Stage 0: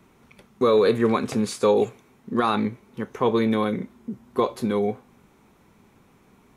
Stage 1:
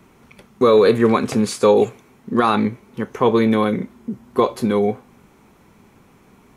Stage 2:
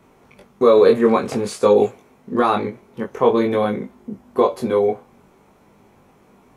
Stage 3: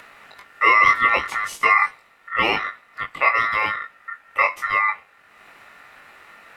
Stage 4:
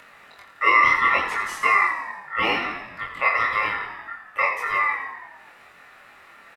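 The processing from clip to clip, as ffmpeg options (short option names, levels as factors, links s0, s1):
-af "bandreject=f=3700:w=26,volume=1.88"
-af "equalizer=f=610:t=o:w=1.4:g=7,flanger=delay=19.5:depth=2.3:speed=0.5,volume=0.891"
-af "acompressor=mode=upward:threshold=0.02:ratio=2.5,aeval=exprs='val(0)*sin(2*PI*1600*n/s)':c=same"
-filter_complex "[0:a]asplit=2[s0][s1];[s1]asplit=8[s2][s3][s4][s5][s6][s7][s8][s9];[s2]adelay=85,afreqshift=-43,volume=0.376[s10];[s3]adelay=170,afreqshift=-86,volume=0.237[s11];[s4]adelay=255,afreqshift=-129,volume=0.15[s12];[s5]adelay=340,afreqshift=-172,volume=0.0944[s13];[s6]adelay=425,afreqshift=-215,volume=0.0589[s14];[s7]adelay=510,afreqshift=-258,volume=0.0372[s15];[s8]adelay=595,afreqshift=-301,volume=0.0234[s16];[s9]adelay=680,afreqshift=-344,volume=0.0148[s17];[s10][s11][s12][s13][s14][s15][s16][s17]amix=inputs=8:normalize=0[s18];[s0][s18]amix=inputs=2:normalize=0,flanger=delay=22.5:depth=4.1:speed=0.7"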